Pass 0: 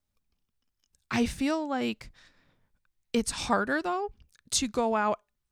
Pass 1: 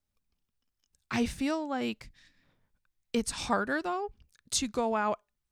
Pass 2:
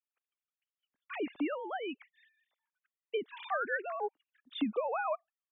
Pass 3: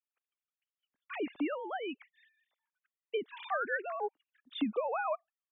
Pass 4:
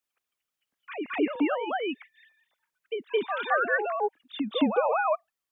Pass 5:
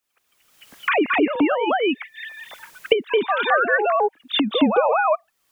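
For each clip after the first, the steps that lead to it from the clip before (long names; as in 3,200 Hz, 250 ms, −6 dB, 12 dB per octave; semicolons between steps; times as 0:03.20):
gain on a spectral selection 0:02.05–0:02.43, 340–1,600 Hz −9 dB; level −2.5 dB
three sine waves on the formant tracks; level −4.5 dB
no processing that can be heard
backwards echo 218 ms −6.5 dB; level +8 dB
camcorder AGC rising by 41 dB per second; level +6.5 dB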